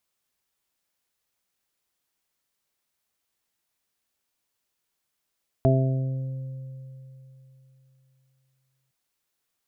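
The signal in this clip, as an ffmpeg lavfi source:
-f lavfi -i "aevalsrc='0.133*pow(10,-3*t/3.39)*sin(2*PI*132*t)+0.0708*pow(10,-3*t/1.57)*sin(2*PI*264*t)+0.0668*pow(10,-3*t/1.09)*sin(2*PI*396*t)+0.0188*pow(10,-3*t/3.13)*sin(2*PI*528*t)+0.112*pow(10,-3*t/0.81)*sin(2*PI*660*t)':d=3.26:s=44100"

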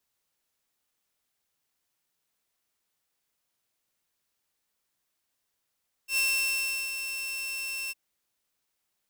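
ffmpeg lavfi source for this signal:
-f lavfi -i "aevalsrc='0.0944*(2*mod(2690*t,1)-1)':d=1.856:s=44100,afade=t=in:d=0.089,afade=t=out:st=0.089:d=0.734:silence=0.355,afade=t=out:st=1.83:d=0.026"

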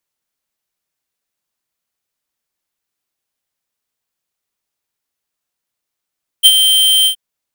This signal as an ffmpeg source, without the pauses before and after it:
-f lavfi -i "aevalsrc='0.668*(2*lt(mod(3140*t,1),0.5)-1)':d=0.722:s=44100,afade=t=in:d=0.028,afade=t=out:st=0.028:d=0.049:silence=0.447,afade=t=out:st=0.63:d=0.092"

